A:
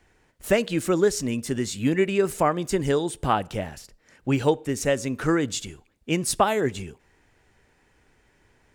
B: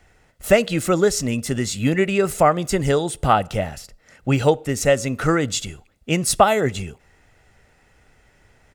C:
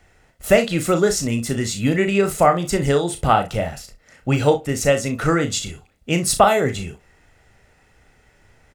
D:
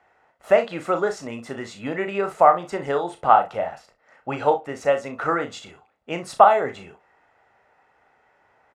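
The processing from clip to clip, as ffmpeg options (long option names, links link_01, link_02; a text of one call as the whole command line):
ffmpeg -i in.wav -af "aecho=1:1:1.5:0.38,volume=5dB" out.wav
ffmpeg -i in.wav -af "aecho=1:1:35|61:0.398|0.178" out.wav
ffmpeg -i in.wav -af "bandpass=frequency=920:width_type=q:width=1.6:csg=0,volume=3.5dB" out.wav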